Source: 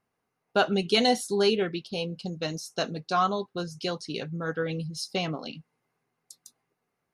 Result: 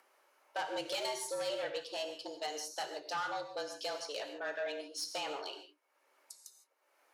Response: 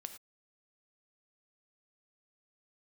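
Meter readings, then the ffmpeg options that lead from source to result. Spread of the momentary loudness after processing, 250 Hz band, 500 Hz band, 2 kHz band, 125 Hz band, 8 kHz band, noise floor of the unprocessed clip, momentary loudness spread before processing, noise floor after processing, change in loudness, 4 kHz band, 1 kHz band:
10 LU, -20.0 dB, -10.5 dB, -8.0 dB, -31.0 dB, -3.5 dB, -81 dBFS, 11 LU, -76 dBFS, -10.5 dB, -9.5 dB, -10.0 dB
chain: -filter_complex "[0:a]highpass=360,aeval=exprs='0.335*(cos(1*acos(clip(val(0)/0.335,-1,1)))-cos(1*PI/2))+0.0422*(cos(2*acos(clip(val(0)/0.335,-1,1)))-cos(2*PI/2))':c=same,acompressor=threshold=-26dB:ratio=6,asoftclip=type=tanh:threshold=-29.5dB,acompressor=mode=upward:threshold=-54dB:ratio=2.5,afreqshift=140[a];[1:a]atrim=start_sample=2205,asetrate=30870,aresample=44100[b];[a][b]afir=irnorm=-1:irlink=0"

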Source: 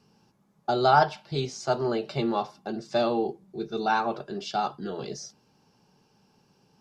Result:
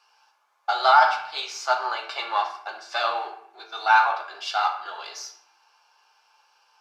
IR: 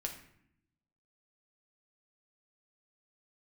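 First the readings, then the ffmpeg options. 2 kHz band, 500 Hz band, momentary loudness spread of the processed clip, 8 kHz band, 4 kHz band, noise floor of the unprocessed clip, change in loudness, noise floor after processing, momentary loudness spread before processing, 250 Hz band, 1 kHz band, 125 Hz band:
+9.5 dB, -4.5 dB, 19 LU, +3.5 dB, +6.5 dB, -66 dBFS, +4.5 dB, -66 dBFS, 15 LU, under -20 dB, +5.5 dB, under -35 dB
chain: -filter_complex "[0:a]aeval=exprs='if(lt(val(0),0),0.708*val(0),val(0))':c=same,highpass=f=930:w=0.5412,highpass=f=930:w=1.3066,highshelf=f=4.2k:g=-12,bandreject=f=1.9k:w=8.7,acontrast=43[a];[1:a]atrim=start_sample=2205[b];[a][b]afir=irnorm=-1:irlink=0,alimiter=level_in=12.5dB:limit=-1dB:release=50:level=0:latency=1,volume=-4.5dB"

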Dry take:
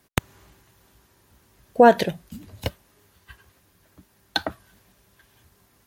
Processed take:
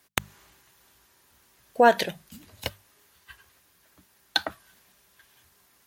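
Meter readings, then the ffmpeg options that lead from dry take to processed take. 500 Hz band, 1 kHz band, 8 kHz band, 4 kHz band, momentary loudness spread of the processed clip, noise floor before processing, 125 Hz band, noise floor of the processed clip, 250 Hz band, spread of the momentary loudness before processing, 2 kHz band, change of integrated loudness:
-5.0 dB, -3.0 dB, +1.5 dB, +1.0 dB, 18 LU, -62 dBFS, -9.5 dB, -64 dBFS, -8.5 dB, 20 LU, 0.0 dB, -3.5 dB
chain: -af "tiltshelf=f=660:g=-5.5,bandreject=f=50:t=h:w=6,bandreject=f=100:t=h:w=6,bandreject=f=150:t=h:w=6,bandreject=f=200:t=h:w=6,volume=-4dB"

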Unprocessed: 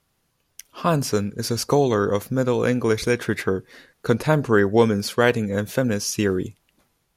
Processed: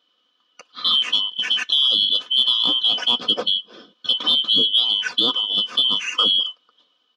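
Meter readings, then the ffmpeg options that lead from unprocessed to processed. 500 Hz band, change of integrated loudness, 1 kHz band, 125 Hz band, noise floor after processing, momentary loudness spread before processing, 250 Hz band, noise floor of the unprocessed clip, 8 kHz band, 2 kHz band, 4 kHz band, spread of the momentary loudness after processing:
-16.5 dB, +4.5 dB, -6.5 dB, under -20 dB, -67 dBFS, 7 LU, -14.5 dB, -70 dBFS, n/a, -4.0 dB, +21.0 dB, 6 LU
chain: -af "afftfilt=real='real(if(lt(b,272),68*(eq(floor(b/68),0)*1+eq(floor(b/68),1)*3+eq(floor(b/68),2)*0+eq(floor(b/68),3)*2)+mod(b,68),b),0)':imag='imag(if(lt(b,272),68*(eq(floor(b/68),0)*1+eq(floor(b/68),1)*3+eq(floor(b/68),2)*0+eq(floor(b/68),3)*2)+mod(b,68),b),0)':win_size=2048:overlap=0.75,highpass=280,equalizer=f=340:t=q:w=4:g=4,equalizer=f=810:t=q:w=4:g=-7,equalizer=f=1.2k:t=q:w=4:g=6,equalizer=f=2k:t=q:w=4:g=-9,equalizer=f=4.2k:t=q:w=4:g=-5,lowpass=f=4.4k:w=0.5412,lowpass=f=4.4k:w=1.3066,alimiter=limit=-11.5dB:level=0:latency=1:release=127,aecho=1:1:4:0.62,acontrast=40,volume=-1dB"

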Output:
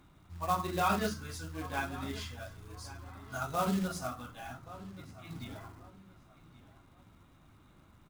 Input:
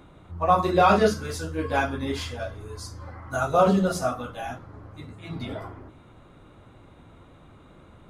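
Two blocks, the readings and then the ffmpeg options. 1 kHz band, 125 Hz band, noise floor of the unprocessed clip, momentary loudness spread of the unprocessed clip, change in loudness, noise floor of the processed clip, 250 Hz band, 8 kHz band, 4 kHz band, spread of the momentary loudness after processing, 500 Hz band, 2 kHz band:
-11.0 dB, -9.5 dB, -52 dBFS, 22 LU, -12.0 dB, -62 dBFS, -10.0 dB, -6.0 dB, -8.0 dB, 18 LU, -15.5 dB, -9.0 dB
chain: -filter_complex "[0:a]acrusher=bits=4:mode=log:mix=0:aa=0.000001,equalizer=f=500:w=1.6:g=-9.5,asplit=2[a][b];[b]adelay=1127,lowpass=f=4.7k:p=1,volume=-16.5dB,asplit=2[c][d];[d]adelay=1127,lowpass=f=4.7k:p=1,volume=0.29,asplit=2[e][f];[f]adelay=1127,lowpass=f=4.7k:p=1,volume=0.29[g];[a][c][e][g]amix=inputs=4:normalize=0,volume=-9dB"

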